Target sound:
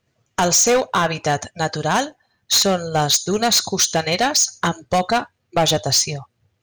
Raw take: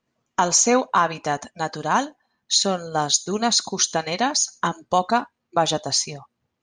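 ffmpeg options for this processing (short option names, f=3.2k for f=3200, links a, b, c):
-af "equalizer=f=100:t=o:w=0.67:g=11,equalizer=f=250:t=o:w=0.67:g=-8,equalizer=f=1k:t=o:w=0.67:g=-7,volume=19.5dB,asoftclip=hard,volume=-19.5dB,volume=7.5dB"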